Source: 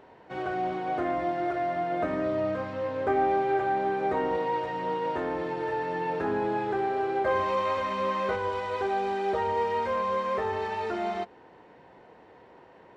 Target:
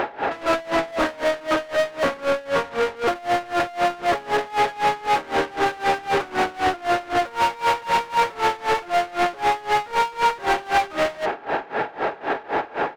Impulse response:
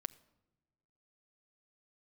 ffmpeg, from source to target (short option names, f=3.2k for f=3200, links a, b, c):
-filter_complex "[0:a]asplit=2[a][b];[b]highpass=f=720:p=1,volume=39dB,asoftclip=type=tanh:threshold=-14.5dB[c];[a][c]amix=inputs=2:normalize=0,lowpass=f=1k:p=1,volume=-6dB,asplit=2[d][e];[1:a]atrim=start_sample=2205,asetrate=43659,aresample=44100[f];[e][f]afir=irnorm=-1:irlink=0,volume=8.5dB[g];[d][g]amix=inputs=2:normalize=0,asetrate=39289,aresample=44100,atempo=1.12246,alimiter=limit=-11dB:level=0:latency=1:release=339,tiltshelf=f=780:g=-6.5,aeval=exprs='val(0)*pow(10,-23*(0.5-0.5*cos(2*PI*3.9*n/s))/20)':c=same"